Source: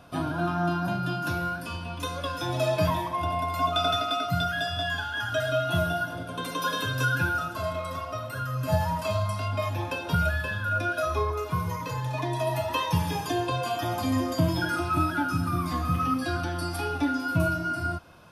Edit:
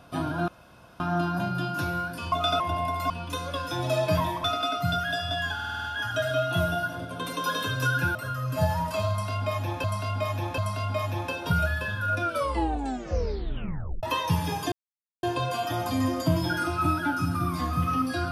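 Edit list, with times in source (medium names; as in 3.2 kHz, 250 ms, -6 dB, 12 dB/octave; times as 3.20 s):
0.48 s: insert room tone 0.52 s
1.80–3.14 s: swap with 3.64–3.92 s
5.02 s: stutter 0.05 s, 7 plays
7.33–8.26 s: delete
9.21–9.95 s: loop, 3 plays
10.85 s: tape stop 1.81 s
13.35 s: insert silence 0.51 s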